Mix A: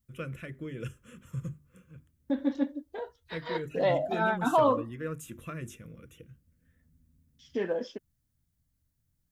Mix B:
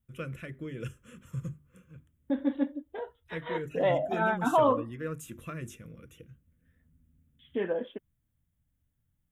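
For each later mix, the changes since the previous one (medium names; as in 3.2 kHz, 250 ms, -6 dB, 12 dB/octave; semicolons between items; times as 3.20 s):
second voice: add steep low-pass 3.6 kHz 96 dB/octave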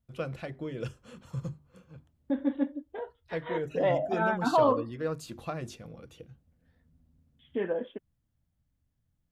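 first voice: remove static phaser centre 1.9 kHz, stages 4; master: add treble shelf 4.5 kHz -8 dB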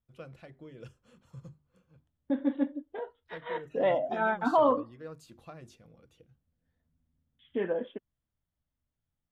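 first voice -11.5 dB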